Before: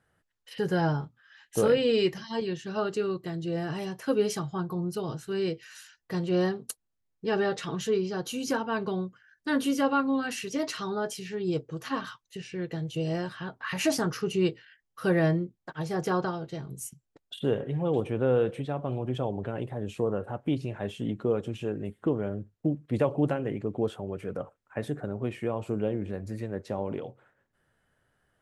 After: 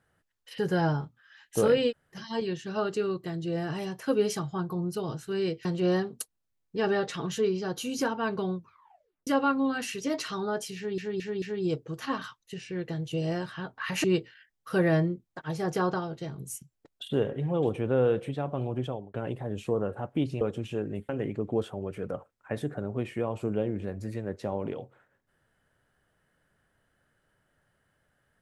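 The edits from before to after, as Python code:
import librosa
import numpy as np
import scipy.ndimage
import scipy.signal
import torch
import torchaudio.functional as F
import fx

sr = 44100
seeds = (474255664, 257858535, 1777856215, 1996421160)

y = fx.edit(x, sr, fx.room_tone_fill(start_s=1.9, length_s=0.25, crossfade_s=0.06),
    fx.cut(start_s=5.65, length_s=0.49),
    fx.tape_stop(start_s=9.05, length_s=0.71),
    fx.stutter(start_s=11.25, slice_s=0.22, count=4),
    fx.cut(start_s=13.87, length_s=0.48),
    fx.fade_out_span(start_s=19.1, length_s=0.35),
    fx.cut(start_s=20.72, length_s=0.59),
    fx.cut(start_s=21.99, length_s=1.36), tone=tone)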